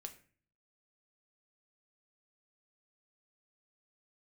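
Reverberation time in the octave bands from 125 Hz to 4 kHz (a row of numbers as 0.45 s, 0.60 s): 0.80 s, 0.65 s, 0.45 s, 0.40 s, 0.50 s, 0.35 s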